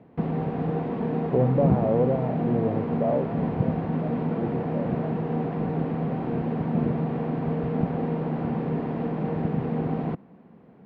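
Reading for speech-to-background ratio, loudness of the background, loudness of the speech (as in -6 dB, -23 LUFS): -0.5 dB, -27.5 LUFS, -28.0 LUFS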